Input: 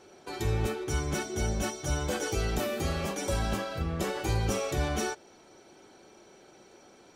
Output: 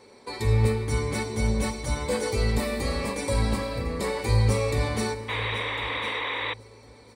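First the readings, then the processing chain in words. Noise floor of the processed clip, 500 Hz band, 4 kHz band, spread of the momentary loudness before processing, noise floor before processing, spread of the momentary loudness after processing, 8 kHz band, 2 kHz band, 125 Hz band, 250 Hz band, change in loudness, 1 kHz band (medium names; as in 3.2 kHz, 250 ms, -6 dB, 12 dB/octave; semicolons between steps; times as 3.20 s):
-51 dBFS, +5.0 dB, +6.0 dB, 3 LU, -56 dBFS, 6 LU, 0.0 dB, +7.0 dB, +7.0 dB, +4.0 dB, +4.5 dB, +4.0 dB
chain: on a send: feedback delay 1053 ms, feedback 23%, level -16.5 dB; on the sum: FDN reverb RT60 2.4 s, low-frequency decay 1.25×, high-frequency decay 0.65×, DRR 11 dB; painted sound noise, 5.28–6.54 s, 270–3900 Hz -33 dBFS; rippled EQ curve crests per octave 0.95, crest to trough 12 dB; trim +1.5 dB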